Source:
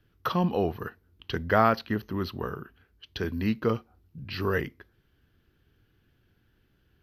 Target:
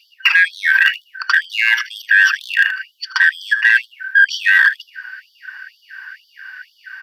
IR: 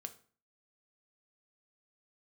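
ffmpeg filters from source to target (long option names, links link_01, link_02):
-filter_complex "[0:a]afftfilt=real='real(if(lt(b,272),68*(eq(floor(b/68),0)*1+eq(floor(b/68),1)*0+eq(floor(b/68),2)*3+eq(floor(b/68),3)*2)+mod(b,68),b),0)':imag='imag(if(lt(b,272),68*(eq(floor(b/68),0)*1+eq(floor(b/68),1)*0+eq(floor(b/68),2)*3+eq(floor(b/68),3)*2)+mod(b,68),b),0)':win_size=2048:overlap=0.75,highpass=frequency=100:width=0.5412,highpass=frequency=100:width=1.3066,acrossover=split=380 3900:gain=0.126 1 0.178[link_01][link_02][link_03];[link_01][link_02][link_03]amix=inputs=3:normalize=0,acrossover=split=390|900|2300|6100[link_04][link_05][link_06][link_07][link_08];[link_04]acompressor=threshold=-60dB:ratio=4[link_09];[link_05]acompressor=threshold=-50dB:ratio=4[link_10];[link_06]acompressor=threshold=-31dB:ratio=4[link_11];[link_07]acompressor=threshold=-40dB:ratio=4[link_12];[link_08]acompressor=threshold=-59dB:ratio=4[link_13];[link_09][link_10][link_11][link_12][link_13]amix=inputs=5:normalize=0,adynamicequalizer=threshold=0.00501:dfrequency=1500:dqfactor=3.5:tfrequency=1500:tqfactor=3.5:attack=5:release=100:ratio=0.375:range=3:mode=boostabove:tftype=bell,areverse,acompressor=threshold=-37dB:ratio=20,areverse,aeval=exprs='0.0355*(cos(1*acos(clip(val(0)/0.0355,-1,1)))-cos(1*PI/2))+0.00447*(cos(2*acos(clip(val(0)/0.0355,-1,1)))-cos(2*PI/2))+0.00112*(cos(5*acos(clip(val(0)/0.0355,-1,1)))-cos(5*PI/2))+0.000891*(cos(7*acos(clip(val(0)/0.0355,-1,1)))-cos(7*PI/2))':channel_layout=same,asplit=2[link_14][link_15];[link_15]aecho=0:1:78|156:0.133|0.0227[link_16];[link_14][link_16]amix=inputs=2:normalize=0,alimiter=level_in=33dB:limit=-1dB:release=50:level=0:latency=1,afftfilt=real='re*gte(b*sr/1024,810*pow(3000/810,0.5+0.5*sin(2*PI*2.1*pts/sr)))':imag='im*gte(b*sr/1024,810*pow(3000/810,0.5+0.5*sin(2*PI*2.1*pts/sr)))':win_size=1024:overlap=0.75"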